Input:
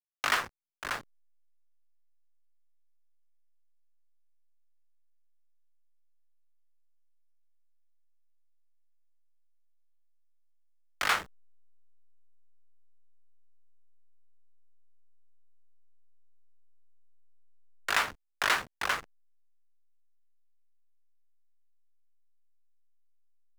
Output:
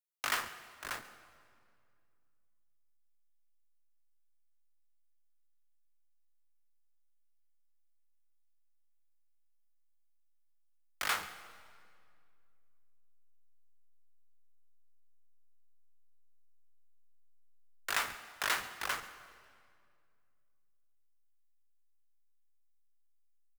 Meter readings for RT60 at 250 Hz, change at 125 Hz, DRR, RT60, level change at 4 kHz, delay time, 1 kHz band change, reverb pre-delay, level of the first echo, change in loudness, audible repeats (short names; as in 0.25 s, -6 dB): 2.8 s, -6.5 dB, 11.0 dB, 2.3 s, -5.0 dB, 0.139 s, -6.5 dB, 26 ms, -19.0 dB, -6.0 dB, 1